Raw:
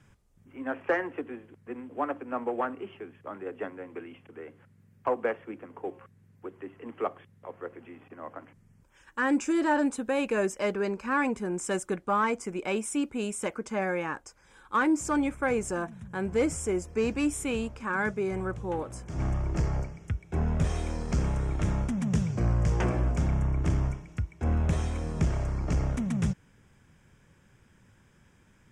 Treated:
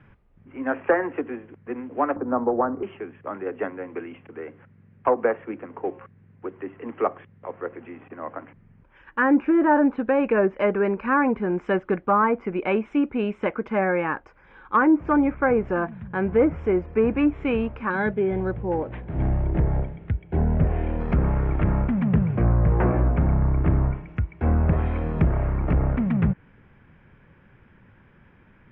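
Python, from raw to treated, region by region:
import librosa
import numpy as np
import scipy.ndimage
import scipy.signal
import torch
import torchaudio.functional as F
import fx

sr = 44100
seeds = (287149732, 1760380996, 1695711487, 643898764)

y = fx.chain(x, sr, fx.lowpass(hz=1300.0, slope=24),
    fx.low_shelf(hz=160.0, db=9.0),
    fx.band_squash(depth_pct=40), at=(2.16, 2.83))
y = fx.chain(y, sr, fx.peak_eq(hz=1200.0, db=-10.0, octaves=0.45),
    fx.resample_linear(factor=8), at=(17.9, 21.0))
y = scipy.signal.sosfilt(scipy.signal.butter(4, 2600.0, 'lowpass', fs=sr, output='sos'), y)
y = fx.peak_eq(y, sr, hz=90.0, db=-2.0, octaves=1.7)
y = fx.env_lowpass_down(y, sr, base_hz=1500.0, full_db=-23.0)
y = F.gain(torch.from_numpy(y), 7.5).numpy()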